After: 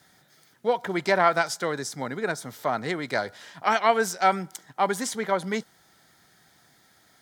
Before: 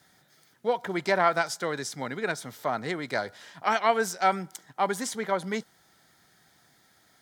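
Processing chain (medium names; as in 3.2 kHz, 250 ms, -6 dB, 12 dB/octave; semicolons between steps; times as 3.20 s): 1.71–2.63 s: dynamic bell 2.8 kHz, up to -6 dB, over -47 dBFS, Q 1.2; trim +2.5 dB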